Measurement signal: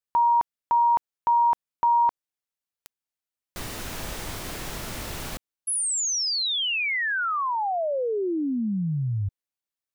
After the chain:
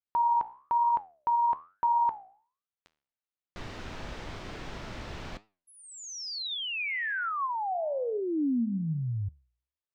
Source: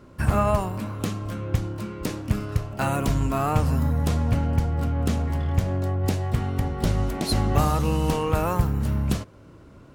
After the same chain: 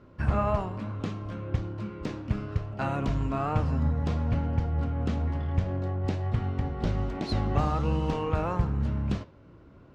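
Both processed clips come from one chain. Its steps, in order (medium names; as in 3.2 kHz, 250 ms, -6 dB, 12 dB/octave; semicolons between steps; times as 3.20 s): flange 1.1 Hz, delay 8.9 ms, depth 8.5 ms, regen +81%; distance through air 160 m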